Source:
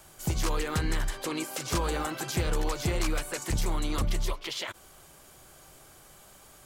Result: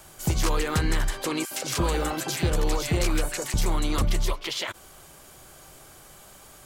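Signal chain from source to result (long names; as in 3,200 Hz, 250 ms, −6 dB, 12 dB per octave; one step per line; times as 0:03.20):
0:01.45–0:03.54: multiband delay without the direct sound highs, lows 60 ms, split 1,300 Hz
level +4.5 dB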